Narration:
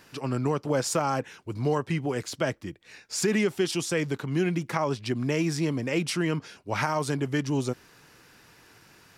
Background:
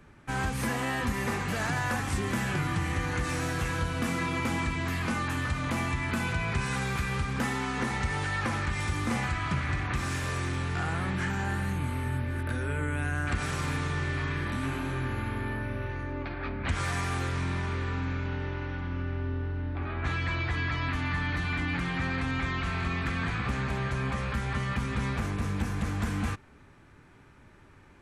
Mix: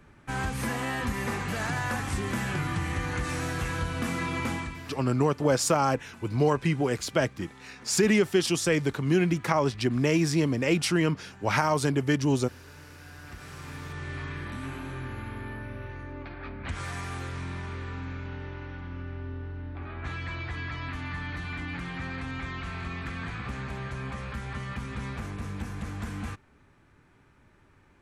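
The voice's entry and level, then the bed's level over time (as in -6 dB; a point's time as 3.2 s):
4.75 s, +2.5 dB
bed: 4.5 s -0.5 dB
5.09 s -19.5 dB
12.94 s -19.5 dB
14.15 s -5 dB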